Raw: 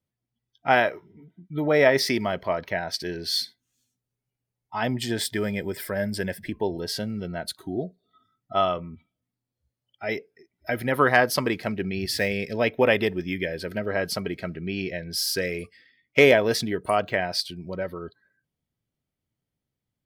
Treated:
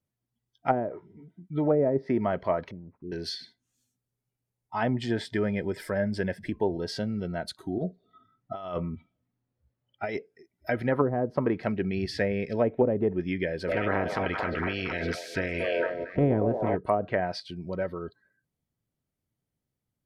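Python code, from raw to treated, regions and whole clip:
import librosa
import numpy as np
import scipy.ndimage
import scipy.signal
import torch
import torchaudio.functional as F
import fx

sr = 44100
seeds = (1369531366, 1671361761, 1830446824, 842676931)

y = fx.chain(x, sr, fx.cheby2_lowpass(hz=640.0, order=4, stop_db=40),
    fx.low_shelf(hz=190.0, db=-7.0),
    fx.resample_bad(factor=8, down='none', up='filtered'), at=(2.71, 3.12))
y = fx.chain(y, sr, fx.env_lowpass(base_hz=2600.0, full_db=-23.0),
    fx.over_compress(threshold_db=-32.0, ratio=-1.0), at=(7.78, 10.17))
y = fx.spec_clip(y, sr, under_db=19, at=(13.67, 16.75), fade=0.02)
y = fx.echo_stepped(y, sr, ms=229, hz=670.0, octaves=0.7, feedback_pct=70, wet_db=-1, at=(13.67, 16.75), fade=0.02)
y = fx.pre_swell(y, sr, db_per_s=24.0, at=(13.67, 16.75), fade=0.02)
y = fx.env_lowpass_down(y, sr, base_hz=410.0, full_db=-16.5)
y = fx.peak_eq(y, sr, hz=3300.0, db=-5.0, octaves=1.8)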